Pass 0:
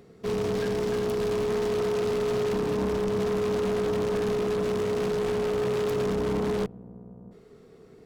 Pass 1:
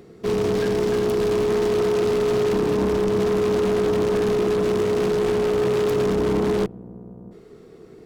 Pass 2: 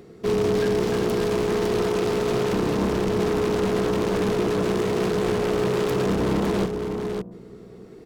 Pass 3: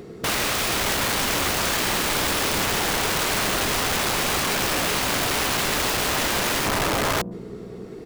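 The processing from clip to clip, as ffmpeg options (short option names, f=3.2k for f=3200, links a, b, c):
-af "equalizer=f=340:t=o:w=0.24:g=8,volume=5dB"
-af "aecho=1:1:556:0.447"
-af "aeval=exprs='(mod(17.8*val(0)+1,2)-1)/17.8':c=same,volume=6.5dB"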